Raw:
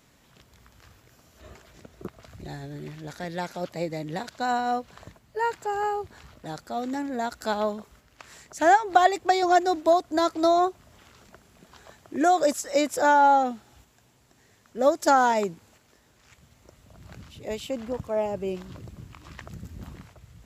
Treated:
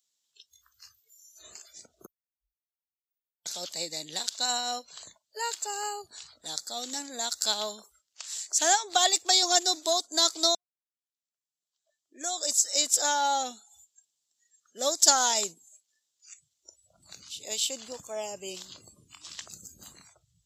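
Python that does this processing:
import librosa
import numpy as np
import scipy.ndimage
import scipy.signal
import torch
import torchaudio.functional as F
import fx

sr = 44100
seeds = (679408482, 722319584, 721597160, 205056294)

y = fx.cheby2_bandstop(x, sr, low_hz=130.0, high_hz=7600.0, order=4, stop_db=60, at=(2.06, 3.46))
y = fx.edit(y, sr, fx.fade_in_span(start_s=10.55, length_s=2.87, curve='qua'), tone=tone)
y = fx.riaa(y, sr, side='recording')
y = fx.noise_reduce_blind(y, sr, reduce_db=26)
y = fx.band_shelf(y, sr, hz=5000.0, db=13.5, octaves=1.7)
y = y * 10.0 ** (-7.5 / 20.0)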